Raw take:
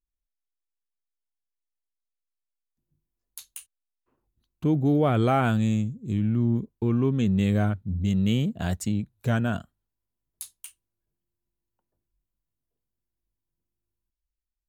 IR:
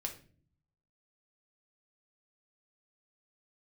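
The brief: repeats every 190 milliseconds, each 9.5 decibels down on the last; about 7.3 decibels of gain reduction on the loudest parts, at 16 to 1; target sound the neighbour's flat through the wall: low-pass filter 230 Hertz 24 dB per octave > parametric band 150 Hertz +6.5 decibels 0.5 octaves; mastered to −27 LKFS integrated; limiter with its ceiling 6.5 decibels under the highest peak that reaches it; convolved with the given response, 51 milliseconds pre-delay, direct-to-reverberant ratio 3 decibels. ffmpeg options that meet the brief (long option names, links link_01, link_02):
-filter_complex "[0:a]acompressor=threshold=-25dB:ratio=16,alimiter=limit=-22.5dB:level=0:latency=1,aecho=1:1:190|380|570|760:0.335|0.111|0.0365|0.012,asplit=2[link_01][link_02];[1:a]atrim=start_sample=2205,adelay=51[link_03];[link_02][link_03]afir=irnorm=-1:irlink=0,volume=-2.5dB[link_04];[link_01][link_04]amix=inputs=2:normalize=0,lowpass=frequency=230:width=0.5412,lowpass=frequency=230:width=1.3066,equalizer=frequency=150:width_type=o:width=0.5:gain=6.5,volume=2dB"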